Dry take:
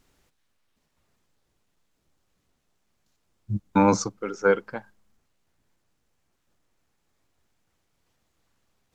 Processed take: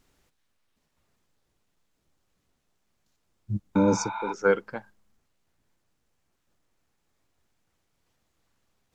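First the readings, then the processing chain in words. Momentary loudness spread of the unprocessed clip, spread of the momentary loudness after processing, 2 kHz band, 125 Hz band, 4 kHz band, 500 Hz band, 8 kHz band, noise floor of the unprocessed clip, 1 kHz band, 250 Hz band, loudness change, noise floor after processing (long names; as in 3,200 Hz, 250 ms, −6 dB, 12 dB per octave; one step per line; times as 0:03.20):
16 LU, 15 LU, −1.5 dB, −1.5 dB, −1.5 dB, −1.5 dB, −1.5 dB, −74 dBFS, −4.5 dB, −1.5 dB, −2.0 dB, −75 dBFS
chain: healed spectral selection 0:03.79–0:04.30, 610–4,500 Hz before
level −1.5 dB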